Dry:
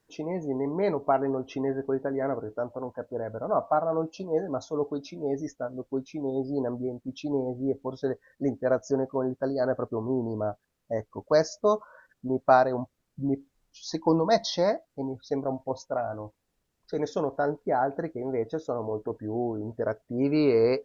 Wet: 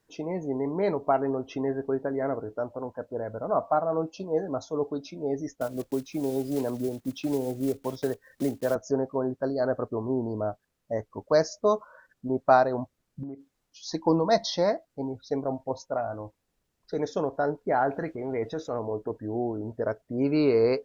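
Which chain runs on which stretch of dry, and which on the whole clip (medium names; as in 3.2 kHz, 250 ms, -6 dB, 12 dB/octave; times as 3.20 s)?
5.61–8.76 s: block-companded coder 5-bit + treble shelf 6.2 kHz +4 dB + three bands compressed up and down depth 70%
13.23–13.86 s: bass shelf 85 Hz -12 dB + compression 12:1, threshold -34 dBFS
17.70–18.79 s: peaking EQ 2.3 kHz +7.5 dB 1.4 oct + transient shaper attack -5 dB, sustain +4 dB
whole clip: none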